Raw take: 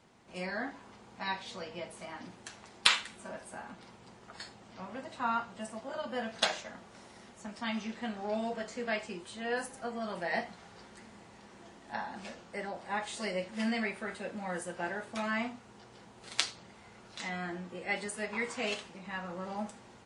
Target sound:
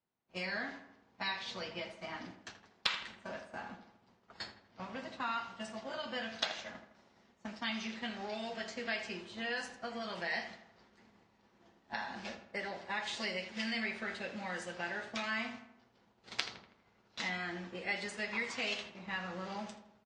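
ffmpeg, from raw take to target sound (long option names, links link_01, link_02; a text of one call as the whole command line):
ffmpeg -i in.wav -filter_complex "[0:a]lowpass=frequency=6000:width=0.5412,lowpass=frequency=6000:width=1.3066,agate=range=-33dB:threshold=-41dB:ratio=3:detection=peak,acrossover=split=1800|4500[link_01][link_02][link_03];[link_01]acompressor=threshold=-48dB:ratio=4[link_04];[link_02]acompressor=threshold=-43dB:ratio=4[link_05];[link_03]acompressor=threshold=-52dB:ratio=4[link_06];[link_04][link_05][link_06]amix=inputs=3:normalize=0,asplit=2[link_07][link_08];[link_08]adelay=81,lowpass=frequency=2800:poles=1,volume=-10.5dB,asplit=2[link_09][link_10];[link_10]adelay=81,lowpass=frequency=2800:poles=1,volume=0.53,asplit=2[link_11][link_12];[link_12]adelay=81,lowpass=frequency=2800:poles=1,volume=0.53,asplit=2[link_13][link_14];[link_14]adelay=81,lowpass=frequency=2800:poles=1,volume=0.53,asplit=2[link_15][link_16];[link_16]adelay=81,lowpass=frequency=2800:poles=1,volume=0.53,asplit=2[link_17][link_18];[link_18]adelay=81,lowpass=frequency=2800:poles=1,volume=0.53[link_19];[link_07][link_09][link_11][link_13][link_15][link_17][link_19]amix=inputs=7:normalize=0,volume=5.5dB" out.wav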